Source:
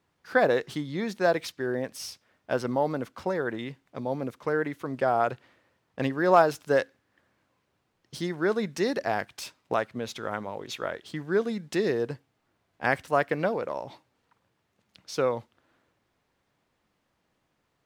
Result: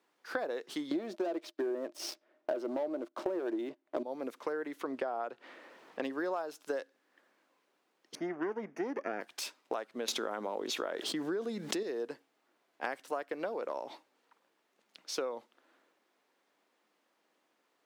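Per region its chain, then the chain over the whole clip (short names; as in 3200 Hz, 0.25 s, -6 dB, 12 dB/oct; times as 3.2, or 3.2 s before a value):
0.91–4.03 LPF 2700 Hz 6 dB/oct + sample leveller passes 3 + small resonant body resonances 340/610 Hz, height 15 dB, ringing for 60 ms
4.81–6.05 high shelf 5800 Hz -9.5 dB + upward compressor, threshold -39 dBFS
8.15–9.21 minimum comb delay 0.47 ms + running mean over 11 samples + mismatched tape noise reduction decoder only
10.08–11.83 low shelf 380 Hz +5.5 dB + fast leveller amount 70%
whole clip: HPF 270 Hz 24 dB/oct; dynamic EQ 2000 Hz, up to -4 dB, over -42 dBFS, Q 1.6; compressor 16:1, threshold -32 dBFS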